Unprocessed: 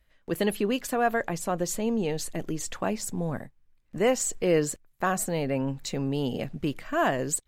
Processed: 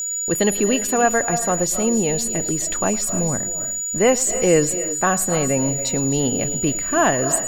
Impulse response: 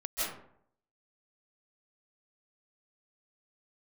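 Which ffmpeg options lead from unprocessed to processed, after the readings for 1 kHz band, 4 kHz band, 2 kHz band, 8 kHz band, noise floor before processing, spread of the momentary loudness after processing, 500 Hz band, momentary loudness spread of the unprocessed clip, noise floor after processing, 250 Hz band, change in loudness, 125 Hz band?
+7.5 dB, +7.5 dB, +7.5 dB, +16.5 dB, −65 dBFS, 5 LU, +7.5 dB, 8 LU, −26 dBFS, +7.5 dB, +9.5 dB, +7.0 dB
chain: -filter_complex "[0:a]aeval=exprs='val(0)+0.0316*sin(2*PI*6900*n/s)':channel_layout=same,acrusher=bits=8:mix=0:aa=0.000001,asplit=2[link_01][link_02];[1:a]atrim=start_sample=2205,afade=type=out:start_time=0.3:duration=0.01,atrim=end_sample=13671,adelay=109[link_03];[link_02][link_03]afir=irnorm=-1:irlink=0,volume=-16dB[link_04];[link_01][link_04]amix=inputs=2:normalize=0,volume=7dB"

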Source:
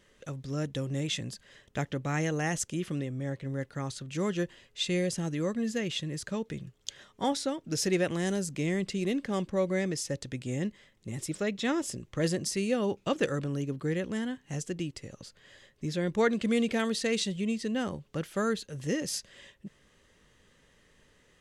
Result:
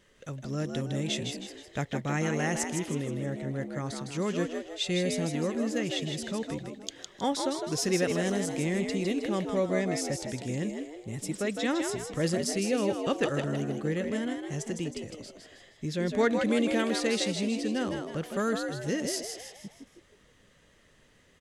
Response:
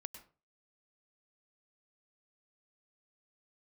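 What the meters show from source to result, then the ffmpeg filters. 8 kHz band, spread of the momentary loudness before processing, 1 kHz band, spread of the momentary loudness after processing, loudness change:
+1.5 dB, 11 LU, +2.0 dB, 10 LU, +1.0 dB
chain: -filter_complex "[0:a]asplit=6[link_01][link_02][link_03][link_04][link_05][link_06];[link_02]adelay=158,afreqshift=74,volume=-5.5dB[link_07];[link_03]adelay=316,afreqshift=148,volume=-12.8dB[link_08];[link_04]adelay=474,afreqshift=222,volume=-20.2dB[link_09];[link_05]adelay=632,afreqshift=296,volume=-27.5dB[link_10];[link_06]adelay=790,afreqshift=370,volume=-34.8dB[link_11];[link_01][link_07][link_08][link_09][link_10][link_11]amix=inputs=6:normalize=0"

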